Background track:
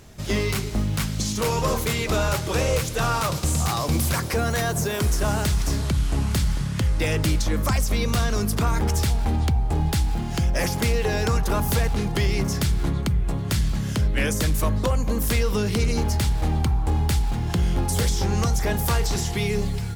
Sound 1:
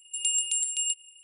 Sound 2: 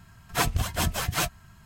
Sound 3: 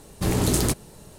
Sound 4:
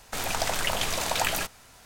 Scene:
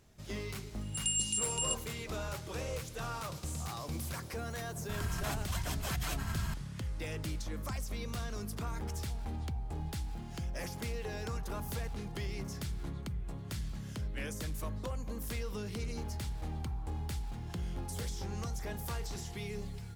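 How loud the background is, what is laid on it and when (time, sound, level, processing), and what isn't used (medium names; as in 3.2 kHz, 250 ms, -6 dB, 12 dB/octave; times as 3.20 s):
background track -16.5 dB
0.81 s: add 1 -6 dB
4.89 s: add 2 -17 dB + level flattener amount 100%
not used: 3, 4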